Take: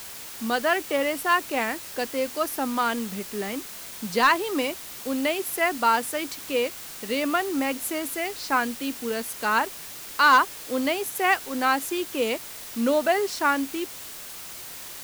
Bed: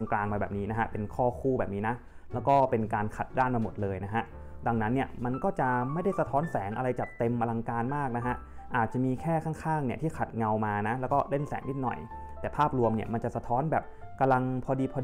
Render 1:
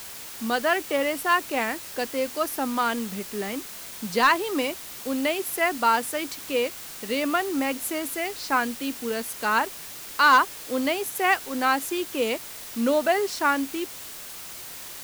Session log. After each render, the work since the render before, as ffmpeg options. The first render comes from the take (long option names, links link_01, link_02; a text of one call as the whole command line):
ffmpeg -i in.wav -af anull out.wav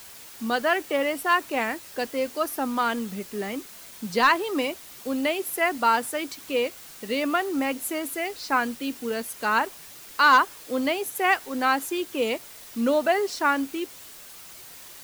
ffmpeg -i in.wav -af "afftdn=noise_reduction=6:noise_floor=-40" out.wav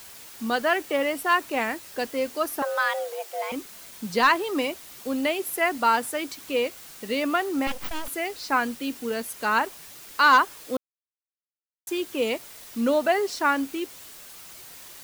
ffmpeg -i in.wav -filter_complex "[0:a]asettb=1/sr,asplit=3[link_01][link_02][link_03];[link_01]atrim=end=2.624[link_04];[link_02]atrim=start=2.62:end=3.52,asetpts=PTS-STARTPTS,afade=type=in:duration=0.004:curve=qsin,afade=type=out:start_time=0.896:duration=0.004:curve=qsin,afreqshift=290[link_05];[link_03]atrim=start=3.516[link_06];[link_04][link_05]acrossfade=duration=0.004:curve1=hsin:curve2=qsin[link_07];[link_07][link_06]acrossfade=duration=0.004:curve1=qsin:curve2=hsin,asettb=1/sr,asplit=3[link_08][link_09][link_10];[link_08]atrim=end=7.674[link_11];[link_09]atrim=start=7.67:end=8.08,asetpts=PTS-STARTPTS,afade=type=in:duration=0.004:curve=qsin,afade=type=out:start_time=0.406:duration=0.004:curve=qsin,aeval=exprs='abs(val(0))':channel_layout=same[link_12];[link_10]atrim=start=8.076[link_13];[link_11][link_12]acrossfade=duration=0.004:curve1=hsin:curve2=qsin[link_14];[link_14][link_13]acrossfade=duration=0.004:curve1=qsin:curve2=hsin,asplit=3[link_15][link_16][link_17];[link_15]atrim=end=10.77,asetpts=PTS-STARTPTS,afade=type=out:start_time=10.766:duration=0.004:curve=hsin[link_18];[link_16]atrim=start=10.77:end=11.87,asetpts=PTS-STARTPTS,volume=0[link_19];[link_17]atrim=start=11.87,asetpts=PTS-STARTPTS,afade=type=in:duration=0.004:curve=hsin[link_20];[link_18][link_19][link_20]concat=n=3:v=0:a=1" out.wav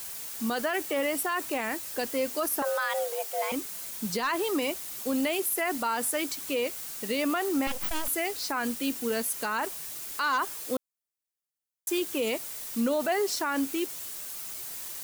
ffmpeg -i in.wav -filter_complex "[0:a]acrossover=split=6200[link_01][link_02];[link_02]acontrast=85[link_03];[link_01][link_03]amix=inputs=2:normalize=0,alimiter=limit=-19.5dB:level=0:latency=1:release=32" out.wav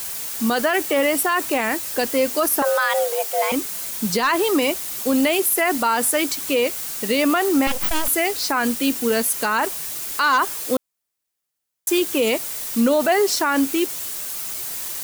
ffmpeg -i in.wav -af "volume=9.5dB" out.wav